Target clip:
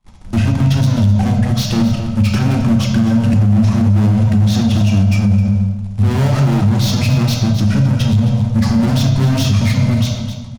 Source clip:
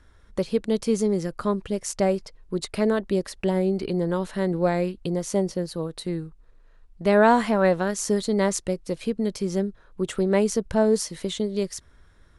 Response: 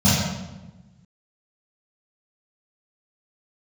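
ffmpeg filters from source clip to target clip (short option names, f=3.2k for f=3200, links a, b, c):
-filter_complex "[0:a]agate=range=-35dB:threshold=-51dB:ratio=16:detection=peak,acontrast=90,asetrate=51597,aresample=44100,acrusher=bits=2:mode=log:mix=0:aa=0.000001,asetrate=22696,aresample=44100,atempo=1.94306,aeval=exprs='(tanh(35.5*val(0)+0.4)-tanh(0.4))/35.5':c=same,aecho=1:1:262:0.251,asplit=2[a][b];[1:a]atrim=start_sample=2205[c];[b][c]afir=irnorm=-1:irlink=0,volume=-20.5dB[d];[a][d]amix=inputs=2:normalize=0,alimiter=level_in=15dB:limit=-1dB:release=50:level=0:latency=1,volume=-4.5dB"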